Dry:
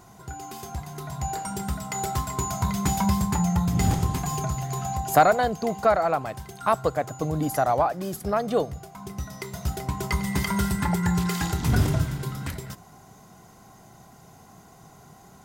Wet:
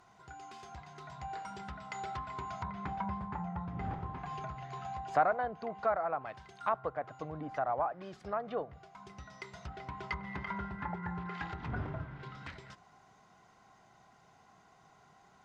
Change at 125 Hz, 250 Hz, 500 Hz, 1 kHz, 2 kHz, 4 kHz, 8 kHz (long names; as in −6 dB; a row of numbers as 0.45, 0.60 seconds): −17.5 dB, −17.0 dB, −12.0 dB, −10.0 dB, −10.0 dB, −17.5 dB, below −25 dB